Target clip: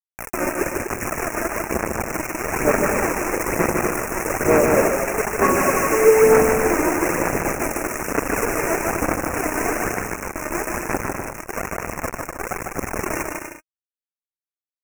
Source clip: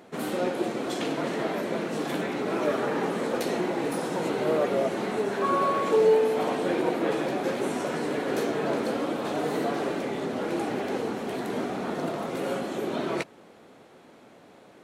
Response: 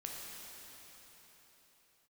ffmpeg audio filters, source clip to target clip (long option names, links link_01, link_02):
-filter_complex "[0:a]asettb=1/sr,asplit=3[link_01][link_02][link_03];[link_01]atrim=end=11.364[link_04];[link_02]atrim=start=11.36:end=11.82,asetpts=PTS-STARTPTS,afade=type=in:duration=0.004:curve=qsin,afade=type=out:start_time=0.456:duration=0.004:curve=qsin,aemphasis=mode=reproduction:type=75fm[link_05];[link_03]atrim=start=11.816[link_06];[link_04][link_05]acrossfade=duration=0.004:curve1=hsin:curve2=qsin[link_07];[link_07][link_06]acrossfade=duration=0.004:curve1=qsin:curve2=hsin,acrusher=bits=3:mix=0:aa=0.000001,aphaser=in_gain=1:out_gain=1:delay=3.3:decay=0.54:speed=1.1:type=sinusoidal,asuperstop=centerf=3800:order=12:qfactor=1.3,aecho=1:1:150|247.5|310.9|352.1|378.8:0.631|0.398|0.251|0.158|0.1,volume=2dB"